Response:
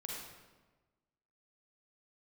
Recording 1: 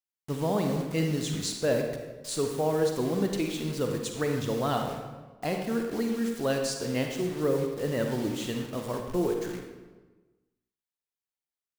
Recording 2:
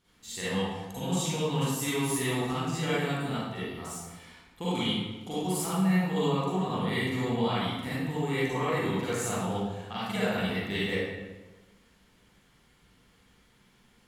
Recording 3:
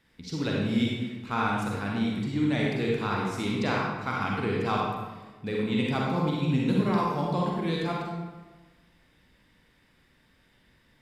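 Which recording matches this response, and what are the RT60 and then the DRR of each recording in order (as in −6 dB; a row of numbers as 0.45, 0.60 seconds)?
3; 1.3, 1.3, 1.3 seconds; 3.0, −10.5, −3.0 decibels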